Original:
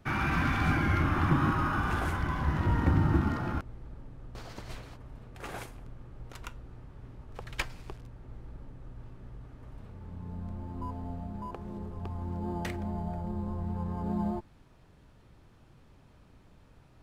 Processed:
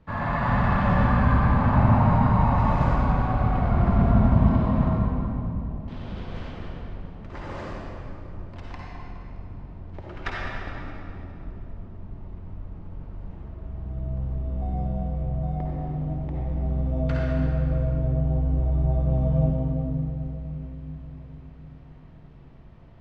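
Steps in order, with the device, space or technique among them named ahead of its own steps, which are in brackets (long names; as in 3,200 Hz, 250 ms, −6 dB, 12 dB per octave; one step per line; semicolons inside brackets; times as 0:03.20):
low-pass filter 5,100 Hz 12 dB per octave
parametric band 230 Hz +4 dB 0.51 octaves
slowed and reverbed (speed change −26%; convolution reverb RT60 2.9 s, pre-delay 49 ms, DRR −4.5 dB)
echo with a time of its own for lows and highs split 460 Hz, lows 560 ms, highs 207 ms, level −12.5 dB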